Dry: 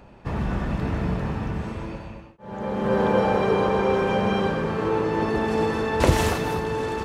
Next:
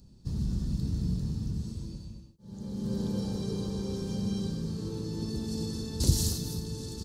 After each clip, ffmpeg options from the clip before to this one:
-af "firequalizer=gain_entry='entry(160,0);entry(620,-24);entry(2300,-25);entry(4300,6)':delay=0.05:min_phase=1,volume=0.668"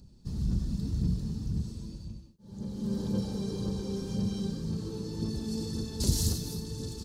-af "aphaser=in_gain=1:out_gain=1:delay=5:decay=0.36:speed=1.9:type=sinusoidal,volume=0.841"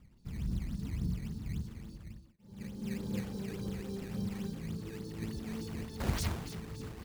-af "acrusher=samples=12:mix=1:aa=0.000001:lfo=1:lforange=19.2:lforate=3.5,volume=0.501"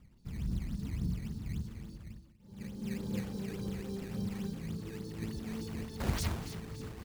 -af "aecho=1:1:245:0.119"

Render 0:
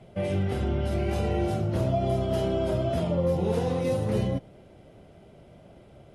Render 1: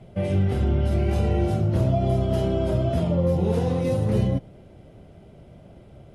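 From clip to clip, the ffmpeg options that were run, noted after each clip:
-af "lowshelf=f=240:g=7.5"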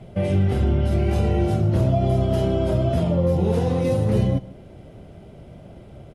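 -filter_complex "[0:a]asplit=2[s0][s1];[s1]alimiter=limit=0.0841:level=0:latency=1:release=387,volume=0.708[s2];[s0][s2]amix=inputs=2:normalize=0,aecho=1:1:149:0.1"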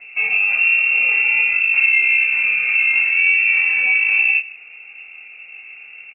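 -filter_complex "[0:a]asplit=2[s0][s1];[s1]adelay=25,volume=0.794[s2];[s0][s2]amix=inputs=2:normalize=0,lowpass=f=2400:t=q:w=0.5098,lowpass=f=2400:t=q:w=0.6013,lowpass=f=2400:t=q:w=0.9,lowpass=f=2400:t=q:w=2.563,afreqshift=-2800,volume=1.19"

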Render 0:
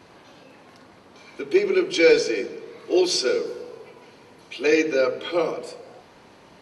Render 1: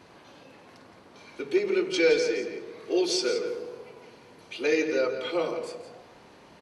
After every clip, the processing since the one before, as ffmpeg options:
-filter_complex "[0:a]asplit=2[s0][s1];[s1]acompressor=threshold=0.0501:ratio=6,volume=0.708[s2];[s0][s2]amix=inputs=2:normalize=0,asplit=2[s3][s4];[s4]adelay=169.1,volume=0.355,highshelf=f=4000:g=-3.8[s5];[s3][s5]amix=inputs=2:normalize=0,volume=0.422"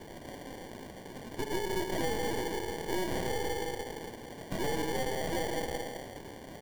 -af "acompressor=threshold=0.0141:ratio=3,acrusher=samples=34:mix=1:aa=0.000001,aeval=exprs='0.0473*(cos(1*acos(clip(val(0)/0.0473,-1,1)))-cos(1*PI/2))+0.0106*(cos(5*acos(clip(val(0)/0.0473,-1,1)))-cos(5*PI/2))+0.0133*(cos(6*acos(clip(val(0)/0.0473,-1,1)))-cos(6*PI/2))':c=same"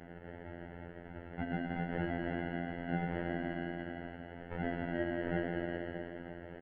-af "aecho=1:1:316|632|948|1264|1580|1896:0.335|0.181|0.0977|0.0527|0.0285|0.0154,highpass=f=210:t=q:w=0.5412,highpass=f=210:t=q:w=1.307,lowpass=f=2600:t=q:w=0.5176,lowpass=f=2600:t=q:w=0.7071,lowpass=f=2600:t=q:w=1.932,afreqshift=-170,afftfilt=real='hypot(re,im)*cos(PI*b)':imag='0':win_size=2048:overlap=0.75,volume=1.12"

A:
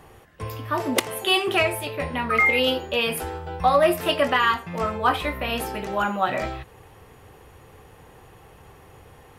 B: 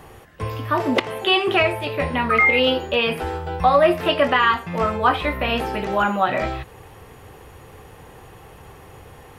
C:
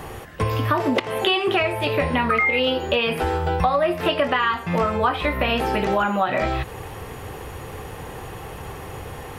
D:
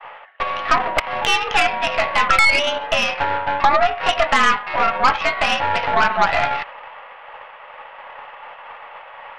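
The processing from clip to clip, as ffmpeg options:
-filter_complex "[0:a]acrossover=split=4200[s0][s1];[s1]acompressor=threshold=0.00251:ratio=4:attack=1:release=60[s2];[s0][s2]amix=inputs=2:normalize=0,asplit=2[s3][s4];[s4]alimiter=limit=0.168:level=0:latency=1:release=347,volume=0.841[s5];[s3][s5]amix=inputs=2:normalize=0"
-af "acompressor=threshold=0.0447:ratio=5,volume=2.66"
-af "highpass=f=600:t=q:w=0.5412,highpass=f=600:t=q:w=1.307,lowpass=f=2900:t=q:w=0.5176,lowpass=f=2900:t=q:w=0.7071,lowpass=f=2900:t=q:w=1.932,afreqshift=74,agate=range=0.0224:threshold=0.0158:ratio=3:detection=peak,aeval=exprs='0.376*(cos(1*acos(clip(val(0)/0.376,-1,1)))-cos(1*PI/2))+0.0531*(cos(6*acos(clip(val(0)/0.376,-1,1)))-cos(6*PI/2))':c=same,volume=1.88"

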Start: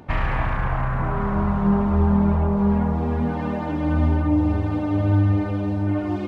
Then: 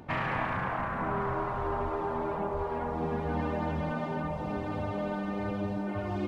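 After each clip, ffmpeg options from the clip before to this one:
-af "afftfilt=real='re*lt(hypot(re,im),0.447)':imag='im*lt(hypot(re,im),0.447)':win_size=1024:overlap=0.75,volume=0.631"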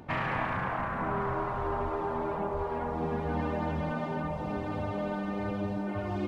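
-af anull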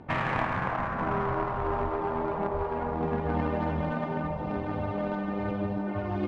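-af "adynamicsmooth=sensitivity=3.5:basefreq=3200,aeval=exprs='0.106*(cos(1*acos(clip(val(0)/0.106,-1,1)))-cos(1*PI/2))+0.015*(cos(3*acos(clip(val(0)/0.106,-1,1)))-cos(3*PI/2))':c=same,volume=2"

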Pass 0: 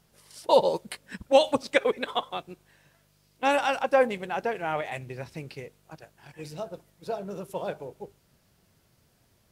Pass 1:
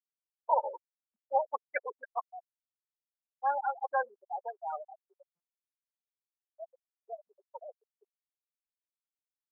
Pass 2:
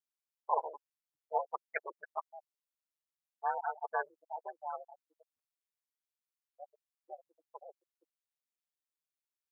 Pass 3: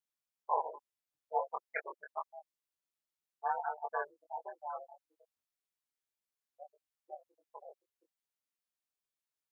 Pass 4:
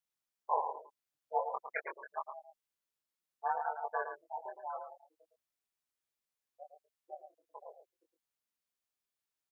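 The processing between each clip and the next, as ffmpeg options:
-af "lowpass=1600,afftfilt=real='re*gte(hypot(re,im),0.158)':imag='im*gte(hypot(re,im),0.158)':win_size=1024:overlap=0.75,highpass=f=800:w=0.5412,highpass=f=800:w=1.3066"
-af "lowshelf=f=470:g=-9.5,aeval=exprs='val(0)*sin(2*PI*77*n/s)':c=same,volume=1.12"
-af "flanger=delay=19.5:depth=2.6:speed=0.29,volume=1.33"
-filter_complex "[0:a]asplit=2[s0][s1];[s1]adelay=110.8,volume=0.398,highshelf=f=4000:g=-2.49[s2];[s0][s2]amix=inputs=2:normalize=0"

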